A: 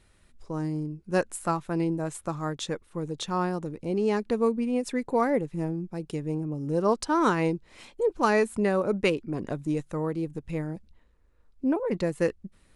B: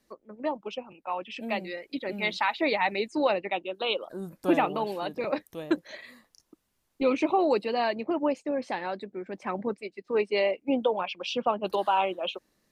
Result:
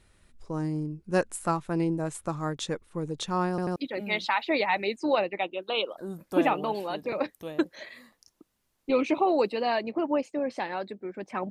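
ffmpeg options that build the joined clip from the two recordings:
-filter_complex "[0:a]apad=whole_dur=11.5,atrim=end=11.5,asplit=3[a][b][c];[a]atrim=end=3.582[d];[b]atrim=start=3.488:end=3.582[e];[c]atrim=start=3.488:end=3.582[f];[1:a]atrim=start=1.878:end=9.62[g];[d][e]acrossfade=d=0.004:c1=hsin:c2=hsin[h];[h][f]acrossfade=d=0.004:c1=hsin:c2=hsin[i];[i][g]acrossfade=d=0.004:c1=hsin:c2=hsin"

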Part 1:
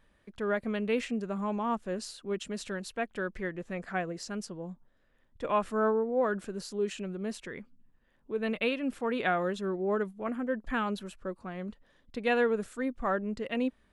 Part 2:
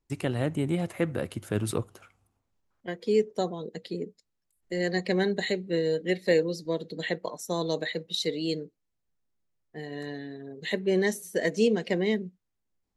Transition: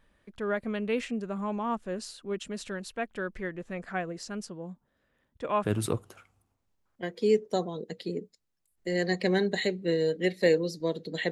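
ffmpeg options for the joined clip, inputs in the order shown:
-filter_complex "[0:a]asettb=1/sr,asplit=3[a][b][c];[a]atrim=end=4.494[d];[b]atrim=start=4.49:end=5.64,asetpts=PTS-STARTPTS,afade=t=in:d=0.004:c=qsin,afade=t=out:st=1.146:d=0.004:c=qsin,highpass=50[e];[c]atrim=start=5.636[f];[d][e]acrossfade=d=0.004:c1=hsin:c2=qsin[g];[g][f]acrossfade=d=0.004:c1=qsin:c2=hsin,apad=whole_dur=11.31,atrim=end=11.31,atrim=end=5.642[h];[1:a]atrim=start=1.488:end=7.16[i];[h][i]acrossfade=d=0.004:c1=hsin:c2=hsin"

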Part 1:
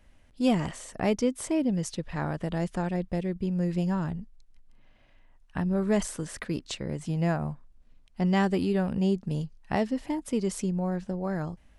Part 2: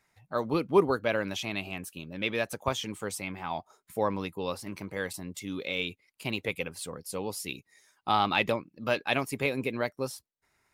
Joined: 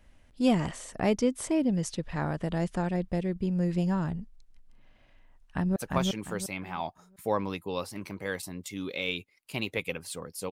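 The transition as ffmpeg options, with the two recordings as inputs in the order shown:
-filter_complex "[0:a]apad=whole_dur=10.51,atrim=end=10.51,atrim=end=5.762[a];[1:a]atrim=start=2.468:end=7.22[b];[a][b]acrossfade=d=0.004:c1=hsin:c2=hsin,asplit=2[c][d];[d]afade=t=in:st=5.47:d=0.01,afade=t=out:st=5.76:d=0.01,aecho=0:1:350|700|1050|1400:0.794328|0.238298|0.0714895|0.0214469[e];[c][e]amix=inputs=2:normalize=0"

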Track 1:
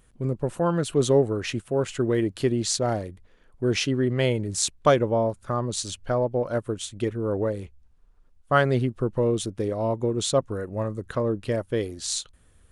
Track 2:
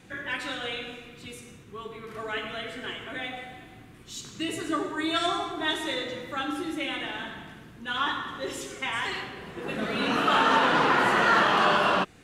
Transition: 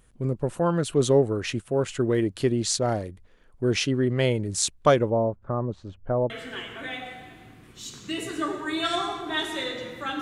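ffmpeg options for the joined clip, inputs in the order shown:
-filter_complex "[0:a]asettb=1/sr,asplit=3[a][b][c];[a]atrim=end=5.104[d];[b]atrim=start=5.1:end=6.3,asetpts=PTS-STARTPTS,afade=t=in:d=0.004:c=qsin,afade=t=out:st=1.196:d=0.004:c=qsin,lowpass=1k[e];[c]atrim=start=6.296[f];[d][e]acrossfade=d=0.004:c1=hsin:c2=qsin[g];[g][f]acrossfade=d=0.004:c1=qsin:c2=hsin,apad=whole_dur=10.21,atrim=end=10.21,atrim=end=6.302[h];[1:a]atrim=start=2.608:end=6.52[i];[h][i]acrossfade=d=0.004:c1=hsin:c2=hsin"

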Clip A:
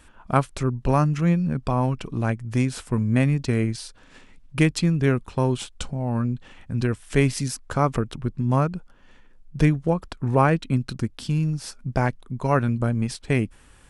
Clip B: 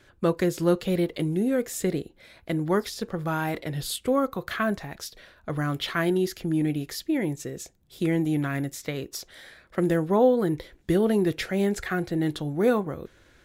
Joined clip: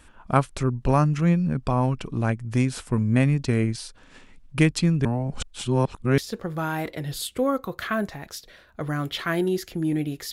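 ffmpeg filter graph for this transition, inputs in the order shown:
-filter_complex "[0:a]apad=whole_dur=10.32,atrim=end=10.32,asplit=2[a][b];[a]atrim=end=5.052[c];[b]atrim=start=5.048:end=6.182,asetpts=PTS-STARTPTS,areverse[d];[1:a]atrim=start=2.868:end=7.01[e];[c][d]acrossfade=d=0.004:c1=hsin:c2=hsin[f];[f][e]acrossfade=d=0.004:c1=hsin:c2=hsin"

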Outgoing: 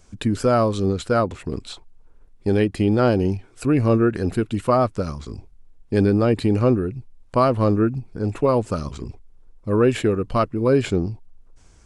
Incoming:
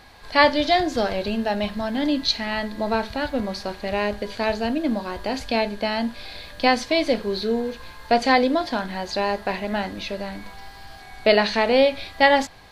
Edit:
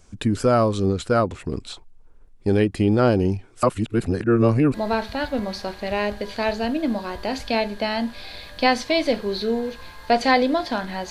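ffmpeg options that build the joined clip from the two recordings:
-filter_complex "[0:a]apad=whole_dur=11.1,atrim=end=11.1,asplit=2[a][b];[a]atrim=end=3.632[c];[b]atrim=start=3.628:end=4.742,asetpts=PTS-STARTPTS,areverse[d];[1:a]atrim=start=2.748:end=9.11[e];[c][d]acrossfade=d=0.004:c1=hsin:c2=hsin[f];[f][e]acrossfade=d=0.004:c1=hsin:c2=hsin"

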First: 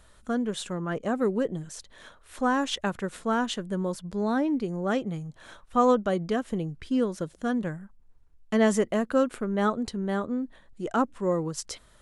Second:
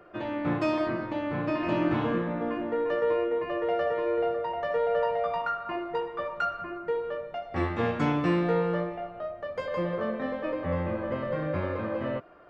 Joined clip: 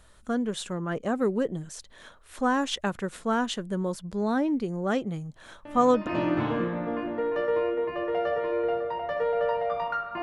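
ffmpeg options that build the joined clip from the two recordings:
-filter_complex "[1:a]asplit=2[a][b];[0:a]apad=whole_dur=10.22,atrim=end=10.22,atrim=end=6.072[c];[b]atrim=start=1.608:end=5.76[d];[a]atrim=start=1.19:end=1.61,asetpts=PTS-STARTPTS,volume=-10dB,afade=t=in:d=0.004:c=hsin,afade=t=out:st=0.416:d=0.004:c=hsin,adelay=249165S[e];[c][d]acrossfade=d=0.004:c1=hsin:c2=hsin[f];[f][e]amix=inputs=2:normalize=0"

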